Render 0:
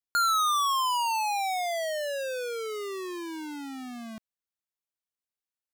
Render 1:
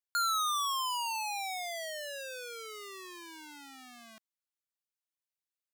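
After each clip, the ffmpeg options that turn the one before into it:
-af "highpass=f=1.5k:p=1,volume=-3dB"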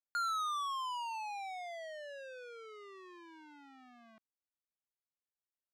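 -af "adynamicsmooth=sensitivity=3:basefreq=1.7k,volume=-4dB"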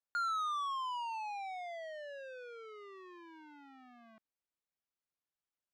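-af "aemphasis=mode=reproduction:type=50kf,volume=1dB"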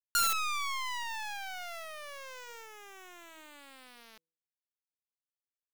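-af "crystalizer=i=6.5:c=0,acrusher=bits=5:dc=4:mix=0:aa=0.000001,bandreject=f=163.4:t=h:w=4,bandreject=f=326.8:t=h:w=4,bandreject=f=490.2:t=h:w=4,volume=1.5dB"

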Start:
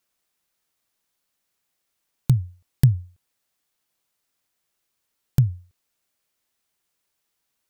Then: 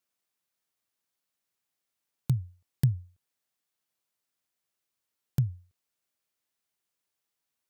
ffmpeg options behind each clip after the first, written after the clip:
-af "highpass=65,volume=-8dB"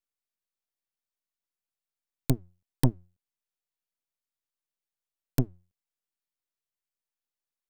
-af "aeval=exprs='max(val(0),0)':c=same,aeval=exprs='0.211*(cos(1*acos(clip(val(0)/0.211,-1,1)))-cos(1*PI/2))+0.0422*(cos(3*acos(clip(val(0)/0.211,-1,1)))-cos(3*PI/2))+0.0211*(cos(5*acos(clip(val(0)/0.211,-1,1)))-cos(5*PI/2))+0.0335*(cos(7*acos(clip(val(0)/0.211,-1,1)))-cos(7*PI/2))':c=same,volume=7dB"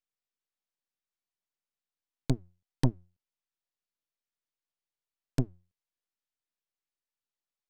-af "lowpass=6.8k,volume=-2.5dB"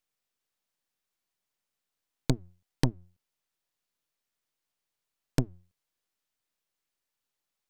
-af "acompressor=threshold=-28dB:ratio=6,volume=7.5dB"

